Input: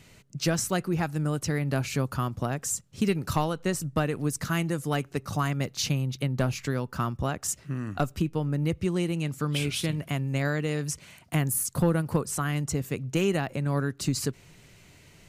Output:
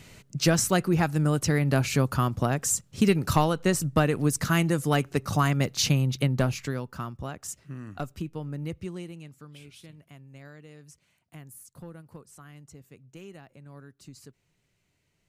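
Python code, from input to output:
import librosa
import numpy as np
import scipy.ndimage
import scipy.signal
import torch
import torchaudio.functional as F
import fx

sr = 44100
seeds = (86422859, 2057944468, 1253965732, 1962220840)

y = fx.gain(x, sr, db=fx.line((6.24, 4.0), (7.09, -7.0), (8.77, -7.0), (9.55, -20.0)))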